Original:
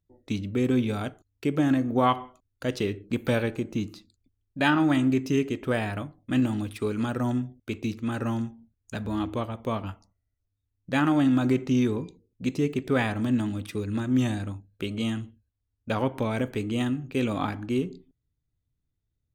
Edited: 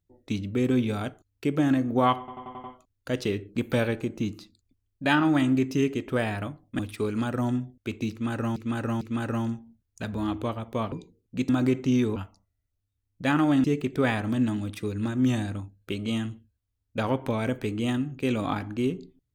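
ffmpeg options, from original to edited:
-filter_complex "[0:a]asplit=13[a][b][c][d][e][f][g][h][i][j][k][l][m];[a]atrim=end=2.282[n];[b]atrim=start=2.188:end=2.282[o];[c]atrim=start=2.188:end=2.282[p];[d]atrim=start=2.188:end=2.282[q];[e]atrim=start=2.188:end=2.282[r];[f]atrim=start=2.188:end=6.342[s];[g]atrim=start=6.608:end=8.382[t];[h]atrim=start=7.928:end=8.382[u];[i]atrim=start=7.928:end=9.842[v];[j]atrim=start=11.988:end=12.562[w];[k]atrim=start=11.318:end=11.992[x];[l]atrim=start=9.838:end=11.322[y];[m]atrim=start=12.558[z];[n][o]acrossfade=d=0.004:c1=hsin:c2=hsin[aa];[aa][p]acrossfade=d=0.004:c1=hsin:c2=hsin[ab];[ab][q]acrossfade=d=0.004:c1=hsin:c2=hsin[ac];[ac][r]acrossfade=d=0.004:c1=hsin:c2=hsin[ad];[ad][s]acrossfade=d=0.004:c1=hsin:c2=hsin[ae];[ae][t]acrossfade=d=0.004:c1=hsin:c2=hsin[af];[af][u]acrossfade=d=0.004:c1=hsin:c2=hsin[ag];[ag][v]acrossfade=d=0.004:c1=hsin:c2=hsin[ah];[ah][w]acrossfade=d=0.004:c1=hsin:c2=hsin[ai];[ai][x]acrossfade=d=0.004:c1=hsin:c2=hsin[aj];[aj][y]acrossfade=d=0.004:c1=hsin:c2=hsin[ak];[ak][z]acrossfade=d=0.004:c1=hsin:c2=hsin"

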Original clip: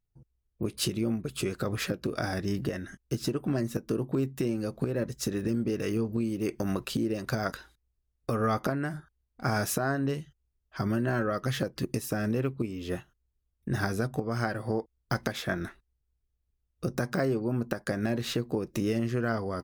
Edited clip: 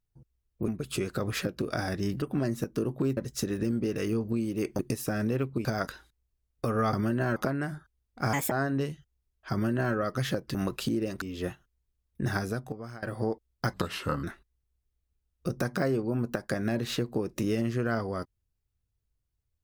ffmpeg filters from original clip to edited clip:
-filter_complex "[0:a]asplit=15[a][b][c][d][e][f][g][h][i][j][k][l][m][n][o];[a]atrim=end=0.682[p];[b]atrim=start=1.128:end=2.672[q];[c]atrim=start=3.348:end=4.302[r];[d]atrim=start=5.008:end=6.632[s];[e]atrim=start=11.828:end=12.692[t];[f]atrim=start=7.298:end=8.582[u];[g]atrim=start=10.798:end=11.232[v];[h]atrim=start=8.578:end=9.554[w];[i]atrim=start=9.55:end=9.8,asetpts=PTS-STARTPTS,asetrate=59535,aresample=44100[x];[j]atrim=start=9.796:end=11.832[y];[k]atrim=start=6.628:end=7.302[z];[l]atrim=start=12.688:end=14.5,asetpts=PTS-STARTPTS,afade=t=out:st=1.102:d=0.71:silence=0.1[aa];[m]atrim=start=14.5:end=15.214,asetpts=PTS-STARTPTS,afade=t=in:d=0.004:c=hsin:silence=0.1[ab];[n]atrim=start=15.21:end=15.61,asetpts=PTS-STARTPTS,asetrate=35280,aresample=44100[ac];[o]atrim=start=15.606[ad];[p][q]acrossfade=d=0.004:c1=hsin:c2=hsin[ae];[ae][r]acrossfade=d=0.004:c1=hsin:c2=hsin[af];[af][s]acrossfade=d=0.004:c1=hsin:c2=hsin[ag];[ag][t]acrossfade=d=0.004:c1=hsin:c2=hsin[ah];[ah][u]acrossfade=d=0.004:c1=hsin:c2=hsin[ai];[ai][v]acrossfade=d=0.004:c1=hsin:c2=hsin[aj];[aj][w]acrossfade=d=0.004:c1=hsin:c2=hsin[ak];[ak][x]acrossfade=d=0.004:c1=hsin:c2=hsin[al];[al][y]acrossfade=d=0.004:c1=hsin:c2=hsin[am];[am][z]acrossfade=d=0.004:c1=hsin:c2=hsin[an];[aa][ab]concat=n=2:v=0:a=1[ao];[an][ao]acrossfade=d=0.004:c1=hsin:c2=hsin[ap];[ap][ac]acrossfade=d=0.004:c1=hsin:c2=hsin[aq];[aq][ad]acrossfade=d=0.004:c1=hsin:c2=hsin"

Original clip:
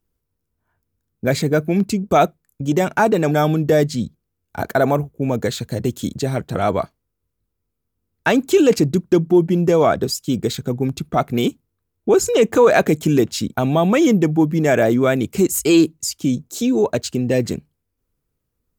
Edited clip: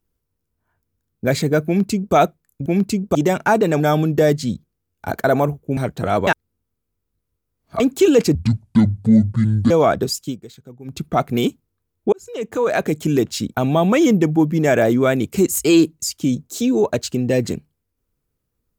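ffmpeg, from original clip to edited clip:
-filter_complex "[0:a]asplit=11[a][b][c][d][e][f][g][h][i][j][k];[a]atrim=end=2.662[l];[b]atrim=start=1.658:end=2.152[m];[c]atrim=start=2.658:end=5.282[n];[d]atrim=start=6.288:end=6.792[o];[e]atrim=start=6.788:end=8.322,asetpts=PTS-STARTPTS,areverse[p];[f]atrim=start=8.318:end=8.874[q];[g]atrim=start=8.87:end=9.71,asetpts=PTS-STARTPTS,asetrate=27342,aresample=44100,atrim=end_sample=59748,asetpts=PTS-STARTPTS[r];[h]atrim=start=9.706:end=10.38,asetpts=PTS-STARTPTS,afade=t=out:st=0.514:d=0.16:silence=0.125893[s];[i]atrim=start=10.38:end=10.85,asetpts=PTS-STARTPTS,volume=-18dB[t];[j]atrim=start=10.85:end=12.13,asetpts=PTS-STARTPTS,afade=t=in:d=0.16:silence=0.125893,afade=t=out:st=1.276:d=0.004:c=hsin[u];[k]atrim=start=12.13,asetpts=PTS-STARTPTS,afade=t=in:d=1.72:c=qsin[v];[l][m]acrossfade=d=0.004:c1=hsin:c2=hsin[w];[w][n]acrossfade=d=0.004:c1=hsin:c2=hsin[x];[x][o]acrossfade=d=0.004:c1=hsin:c2=hsin[y];[y][p]acrossfade=d=0.004:c1=hsin:c2=hsin[z];[z][q]acrossfade=d=0.004:c1=hsin:c2=hsin[aa];[aa][r]acrossfade=d=0.004:c1=hsin:c2=hsin[ab];[s][t][u][v]concat=n=4:v=0:a=1[ac];[ab][ac]acrossfade=d=0.004:c1=hsin:c2=hsin"

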